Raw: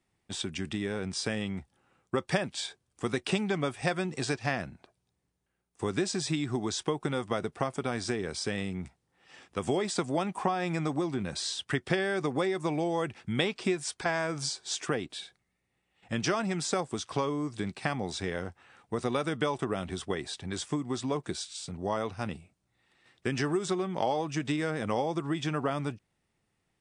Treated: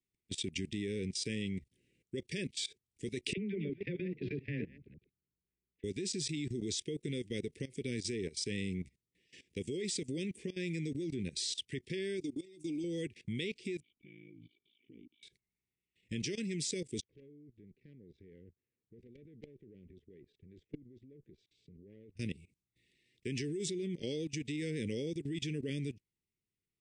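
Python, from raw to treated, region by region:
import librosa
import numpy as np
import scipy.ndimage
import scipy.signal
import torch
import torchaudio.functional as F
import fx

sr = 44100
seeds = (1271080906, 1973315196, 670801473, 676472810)

y = fx.chain(x, sr, fx.reverse_delay(ms=161, wet_db=-9.5),
    fx.bessel_lowpass(hz=1900.0, order=6),
    fx.dispersion(late='lows', ms=47.0, hz=440.0), at=(3.33, 5.84))
y = fx.chain(y, sr, fx.comb(ms=3.7, depth=0.78),
    fx.level_steps(step_db=10),
    fx.fixed_phaser(hz=330.0, stages=8), at=(12.2, 12.84))
y = fx.chain(y, sr, fx.formant_cascade(vowel='i'),
    fx.ring_mod(carrier_hz=27.0), at=(13.8, 15.23))
y = fx.chain(y, sr, fx.lowpass(hz=1100.0, slope=12),
    fx.level_steps(step_db=14),
    fx.tube_stage(drive_db=33.0, bias=0.45), at=(17.01, 22.17))
y = scipy.signal.sosfilt(scipy.signal.ellip(3, 1.0, 40, [440.0, 2100.0], 'bandstop', fs=sr, output='sos'), y)
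y = fx.level_steps(y, sr, step_db=19)
y = F.gain(torch.from_numpy(y), 1.0).numpy()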